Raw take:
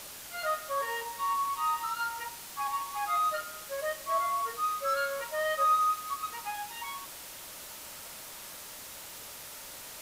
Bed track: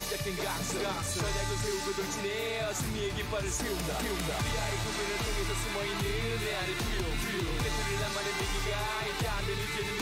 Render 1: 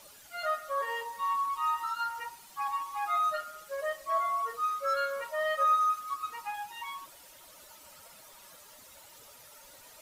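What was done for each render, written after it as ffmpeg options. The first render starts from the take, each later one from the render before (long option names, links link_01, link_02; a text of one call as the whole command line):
ffmpeg -i in.wav -af "afftdn=noise_reduction=12:noise_floor=-45" out.wav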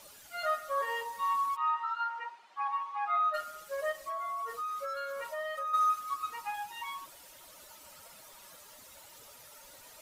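ffmpeg -i in.wav -filter_complex "[0:a]asplit=3[link_01][link_02][link_03];[link_01]afade=type=out:start_time=1.55:duration=0.02[link_04];[link_02]highpass=470,lowpass=2500,afade=type=in:start_time=1.55:duration=0.02,afade=type=out:start_time=3.33:duration=0.02[link_05];[link_03]afade=type=in:start_time=3.33:duration=0.02[link_06];[link_04][link_05][link_06]amix=inputs=3:normalize=0,asplit=3[link_07][link_08][link_09];[link_07]afade=type=out:start_time=3.91:duration=0.02[link_10];[link_08]acompressor=threshold=-34dB:ratio=6:attack=3.2:release=140:knee=1:detection=peak,afade=type=in:start_time=3.91:duration=0.02,afade=type=out:start_time=5.73:duration=0.02[link_11];[link_09]afade=type=in:start_time=5.73:duration=0.02[link_12];[link_10][link_11][link_12]amix=inputs=3:normalize=0" out.wav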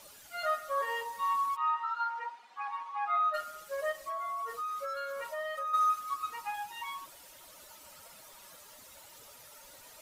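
ffmpeg -i in.wav -filter_complex "[0:a]asettb=1/sr,asplit=3[link_01][link_02][link_03];[link_01]atrim=end=1.944[link_04];[link_02]atrim=start=1.94:end=2.89,asetpts=PTS-STARTPTS,afade=type=in:duration=0.004:curve=qsin,afade=type=out:start_time=0.946:duration=0.004:curve=qsin,aecho=1:1:4.1:0.59,atrim=end_sample=41895[link_05];[link_03]atrim=start=2.886[link_06];[link_04][link_05]acrossfade=duration=0.004:curve1=hsin:curve2=qsin[link_07];[link_07][link_06]acrossfade=duration=0.004:curve1=qsin:curve2=hsin" out.wav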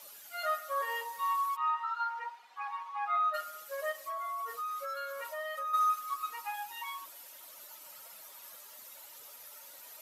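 ffmpeg -i in.wav -af "highpass=frequency=560:poles=1,equalizer=frequency=12000:width=5.5:gain=12.5" out.wav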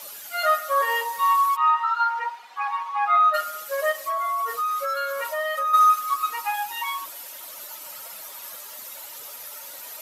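ffmpeg -i in.wav -af "volume=12dB" out.wav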